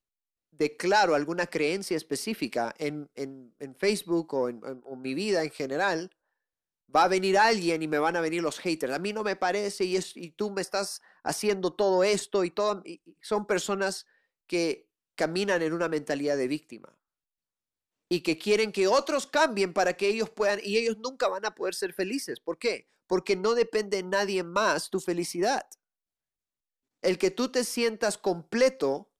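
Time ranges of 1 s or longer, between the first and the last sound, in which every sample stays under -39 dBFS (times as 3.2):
16.88–18.11
25.73–27.03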